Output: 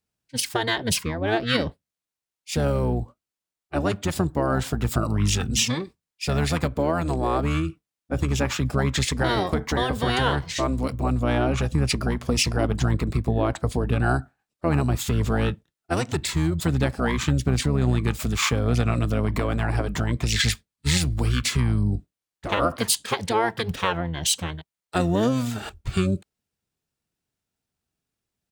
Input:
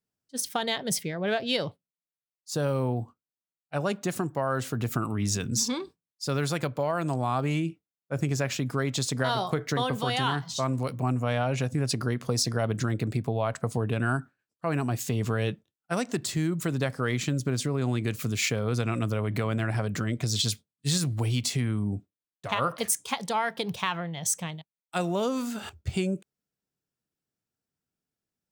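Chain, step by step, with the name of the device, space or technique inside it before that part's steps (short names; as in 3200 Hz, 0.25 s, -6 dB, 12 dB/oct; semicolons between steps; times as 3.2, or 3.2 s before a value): octave pedal (harmoniser -12 st -1 dB); gain +2.5 dB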